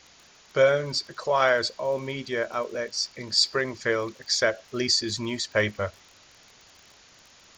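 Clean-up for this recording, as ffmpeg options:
ffmpeg -i in.wav -af "adeclick=threshold=4,afwtdn=0.0032" out.wav

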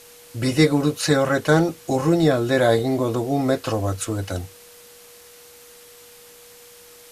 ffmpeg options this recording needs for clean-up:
ffmpeg -i in.wav -af "bandreject=frequency=480:width=30,afwtdn=0.005" out.wav

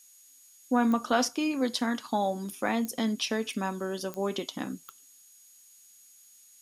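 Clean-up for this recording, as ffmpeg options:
ffmpeg -i in.wav -af "adeclick=threshold=4,bandreject=frequency=6700:width=30,afftdn=noise_reduction=18:noise_floor=-57" out.wav

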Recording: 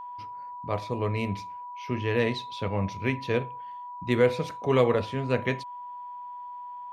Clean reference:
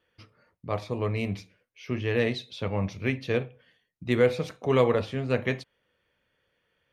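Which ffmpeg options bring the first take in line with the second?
ffmpeg -i in.wav -af "bandreject=frequency=980:width=30" out.wav

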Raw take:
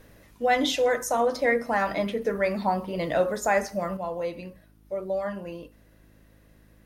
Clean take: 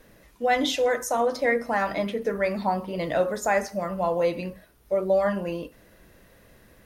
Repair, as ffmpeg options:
ffmpeg -i in.wav -af "bandreject=frequency=52.8:width_type=h:width=4,bandreject=frequency=105.6:width_type=h:width=4,bandreject=frequency=158.4:width_type=h:width=4,bandreject=frequency=211.2:width_type=h:width=4,bandreject=frequency=264:width_type=h:width=4,bandreject=frequency=316.8:width_type=h:width=4,asetnsamples=nb_out_samples=441:pad=0,asendcmd='3.97 volume volume 7dB',volume=0dB" out.wav

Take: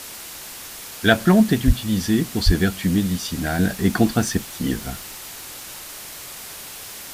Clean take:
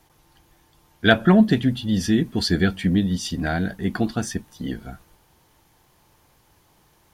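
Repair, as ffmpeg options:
ffmpeg -i in.wav -filter_complex "[0:a]adeclick=threshold=4,asplit=3[link_01][link_02][link_03];[link_01]afade=type=out:start_time=1.66:duration=0.02[link_04];[link_02]highpass=frequency=140:width=0.5412,highpass=frequency=140:width=1.3066,afade=type=in:start_time=1.66:duration=0.02,afade=type=out:start_time=1.78:duration=0.02[link_05];[link_03]afade=type=in:start_time=1.78:duration=0.02[link_06];[link_04][link_05][link_06]amix=inputs=3:normalize=0,asplit=3[link_07][link_08][link_09];[link_07]afade=type=out:start_time=2.45:duration=0.02[link_10];[link_08]highpass=frequency=140:width=0.5412,highpass=frequency=140:width=1.3066,afade=type=in:start_time=2.45:duration=0.02,afade=type=out:start_time=2.57:duration=0.02[link_11];[link_09]afade=type=in:start_time=2.57:duration=0.02[link_12];[link_10][link_11][link_12]amix=inputs=3:normalize=0,afwtdn=0.018,asetnsamples=nb_out_samples=441:pad=0,asendcmd='3.59 volume volume -5.5dB',volume=0dB" out.wav

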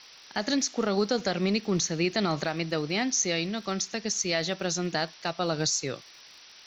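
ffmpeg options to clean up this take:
ffmpeg -i in.wav -af "adeclick=threshold=4,afftdn=noise_reduction=23:noise_floor=-51" out.wav

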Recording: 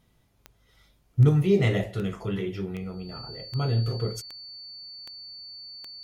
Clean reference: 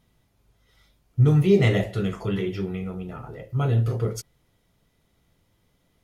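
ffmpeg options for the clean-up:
ffmpeg -i in.wav -af "adeclick=threshold=4,bandreject=frequency=4500:width=30,asetnsamples=nb_out_samples=441:pad=0,asendcmd='1.29 volume volume 3.5dB',volume=0dB" out.wav

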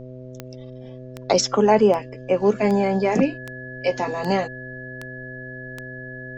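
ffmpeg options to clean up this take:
ffmpeg -i in.wav -af "adeclick=threshold=4,bandreject=frequency=127.5:width_type=h:width=4,bandreject=frequency=255:width_type=h:width=4,bandreject=frequency=382.5:width_type=h:width=4,bandreject=frequency=510:width_type=h:width=4,bandreject=frequency=637.5:width_type=h:width=4,bandreject=frequency=1700:width=30,agate=range=-21dB:threshold=-30dB" out.wav

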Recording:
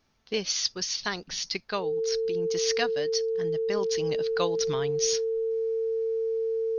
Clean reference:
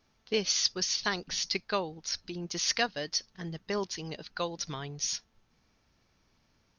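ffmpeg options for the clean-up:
ffmpeg -i in.wav -af "bandreject=frequency=450:width=30,asetnsamples=nb_out_samples=441:pad=0,asendcmd='3.91 volume volume -4.5dB',volume=0dB" out.wav

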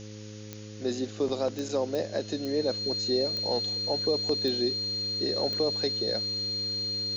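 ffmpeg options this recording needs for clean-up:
ffmpeg -i in.wav -af "adeclick=threshold=4,bandreject=frequency=105.8:width_type=h:width=4,bandreject=frequency=211.6:width_type=h:width=4,bandreject=frequency=317.4:width_type=h:width=4,bandreject=frequency=423.2:width_type=h:width=4,bandreject=frequency=529:width_type=h:width=4,bandreject=frequency=4200:width=30,afftdn=noise_reduction=30:noise_floor=-42" out.wav

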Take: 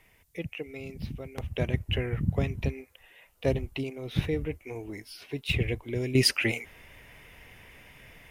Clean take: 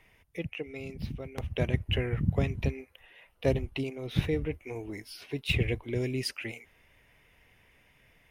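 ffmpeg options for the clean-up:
ffmpeg -i in.wav -af "agate=range=-21dB:threshold=-49dB,asetnsamples=nb_out_samples=441:pad=0,asendcmd='6.15 volume volume -11dB',volume=0dB" out.wav

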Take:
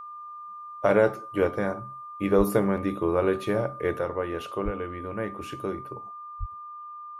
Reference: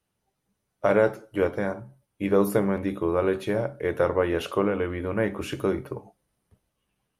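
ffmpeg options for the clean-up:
ffmpeg -i in.wav -filter_complex "[0:a]bandreject=frequency=1200:width=30,asplit=3[link_01][link_02][link_03];[link_01]afade=type=out:start_time=2.37:duration=0.02[link_04];[link_02]highpass=frequency=140:width=0.5412,highpass=frequency=140:width=1.3066,afade=type=in:start_time=2.37:duration=0.02,afade=type=out:start_time=2.49:duration=0.02[link_05];[link_03]afade=type=in:start_time=2.49:duration=0.02[link_06];[link_04][link_05][link_06]amix=inputs=3:normalize=0,asplit=3[link_07][link_08][link_09];[link_07]afade=type=out:start_time=4.64:duration=0.02[link_10];[link_08]highpass=frequency=140:width=0.5412,highpass=frequency=140:width=1.3066,afade=type=in:start_time=4.64:duration=0.02,afade=type=out:start_time=4.76:duration=0.02[link_11];[link_09]afade=type=in:start_time=4.76:duration=0.02[link_12];[link_10][link_11][link_12]amix=inputs=3:normalize=0,asplit=3[link_13][link_14][link_15];[link_13]afade=type=out:start_time=6.39:duration=0.02[link_16];[link_14]highpass=frequency=140:width=0.5412,highpass=frequency=140:width=1.3066,afade=type=in:start_time=6.39:duration=0.02,afade=type=out:start_time=6.51:duration=0.02[link_17];[link_15]afade=type=in:start_time=6.51:duration=0.02[link_18];[link_16][link_17][link_18]amix=inputs=3:normalize=0,asetnsamples=nb_out_samples=441:pad=0,asendcmd='3.99 volume volume 6.5dB',volume=0dB" out.wav

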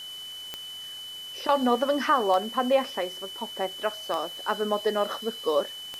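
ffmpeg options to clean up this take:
ffmpeg -i in.wav -af "adeclick=threshold=4,bandreject=frequency=3000:width=30,afwtdn=0.004" out.wav

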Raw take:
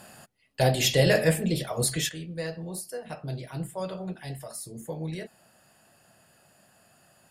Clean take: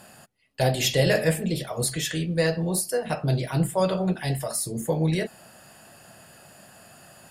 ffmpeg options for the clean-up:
ffmpeg -i in.wav -af "asetnsamples=nb_out_samples=441:pad=0,asendcmd='2.09 volume volume 10.5dB',volume=0dB" out.wav

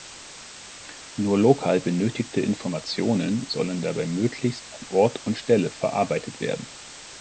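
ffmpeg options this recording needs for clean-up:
ffmpeg -i in.wav -af "afwtdn=0.013" out.wav

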